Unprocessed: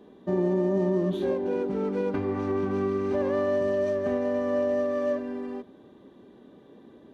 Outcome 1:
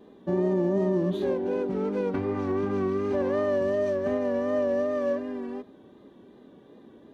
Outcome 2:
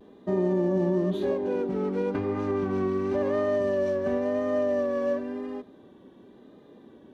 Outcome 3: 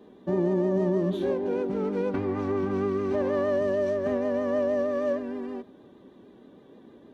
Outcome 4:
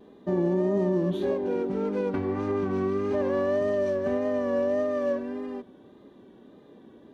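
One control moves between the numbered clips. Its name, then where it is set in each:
pitch vibrato, speed: 2.7, 0.95, 6.4, 1.7 Hertz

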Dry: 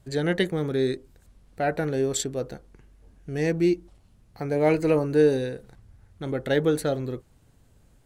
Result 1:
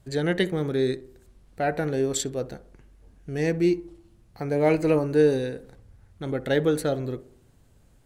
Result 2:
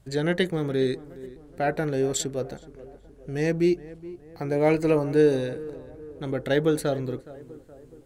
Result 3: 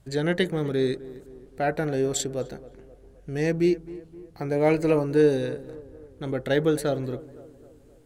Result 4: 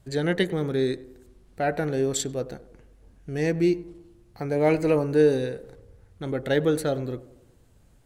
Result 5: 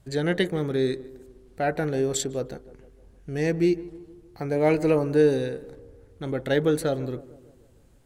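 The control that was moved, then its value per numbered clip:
tape delay, delay time: 65, 419, 259, 99, 153 milliseconds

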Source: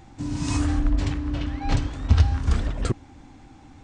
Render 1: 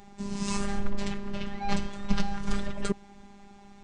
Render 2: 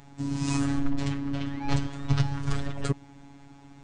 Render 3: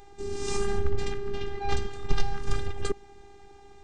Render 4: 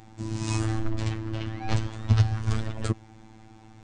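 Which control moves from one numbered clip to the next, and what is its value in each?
phases set to zero, frequency: 200, 140, 400, 110 Hertz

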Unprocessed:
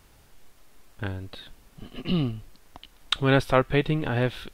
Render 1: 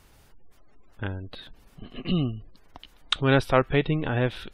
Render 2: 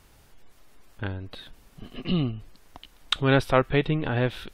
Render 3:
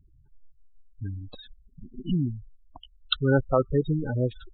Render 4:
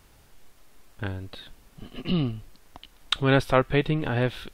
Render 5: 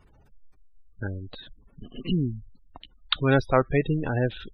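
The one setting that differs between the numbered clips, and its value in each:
gate on every frequency bin, under each frame's peak: −35, −45, −10, −60, −20 decibels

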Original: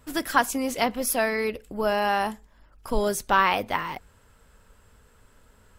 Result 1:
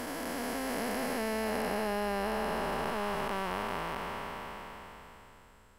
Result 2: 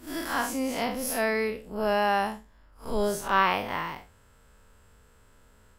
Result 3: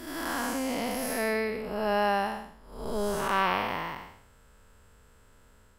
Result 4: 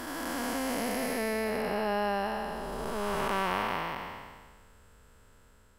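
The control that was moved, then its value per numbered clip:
spectrum smeared in time, width: 1,790, 117, 294, 723 milliseconds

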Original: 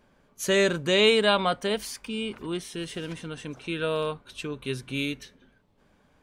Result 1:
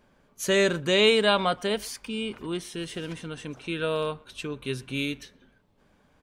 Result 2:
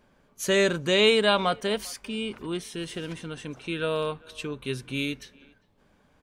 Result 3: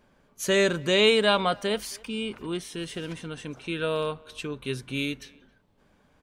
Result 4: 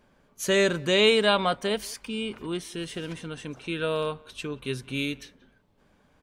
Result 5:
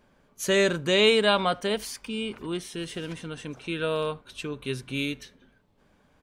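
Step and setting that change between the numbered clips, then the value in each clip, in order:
far-end echo of a speakerphone, delay time: 120, 400, 270, 180, 80 milliseconds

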